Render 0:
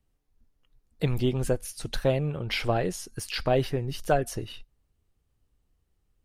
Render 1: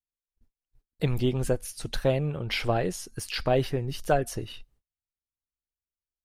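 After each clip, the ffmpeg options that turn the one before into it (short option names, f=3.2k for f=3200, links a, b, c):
-af "agate=range=-31dB:threshold=-60dB:ratio=16:detection=peak"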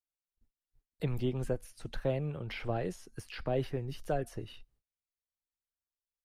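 -filter_complex "[0:a]acrossover=split=210|630|2700[a][b][c][d];[c]alimiter=level_in=3dB:limit=-24dB:level=0:latency=1:release=39,volume=-3dB[e];[d]acompressor=threshold=-47dB:ratio=6[f];[a][b][e][f]amix=inputs=4:normalize=0,volume=-7dB"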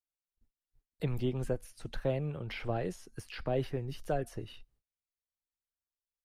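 -af anull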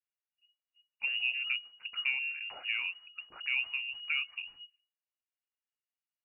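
-af "lowpass=f=2.5k:t=q:w=0.5098,lowpass=f=2.5k:t=q:w=0.6013,lowpass=f=2.5k:t=q:w=0.9,lowpass=f=2.5k:t=q:w=2.563,afreqshift=-2900,tiltshelf=f=720:g=-6,volume=-6dB"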